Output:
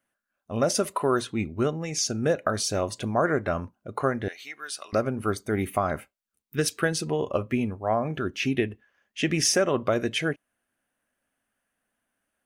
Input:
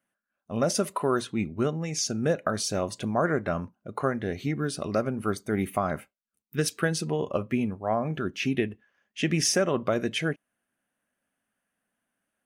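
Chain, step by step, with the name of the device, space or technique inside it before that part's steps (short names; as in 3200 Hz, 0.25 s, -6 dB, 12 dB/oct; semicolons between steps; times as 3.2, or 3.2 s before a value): low shelf boost with a cut just above (low shelf 61 Hz +7.5 dB; bell 180 Hz -6 dB 0.65 oct); 4.28–4.93 HPF 1300 Hz 12 dB/oct; gain +2 dB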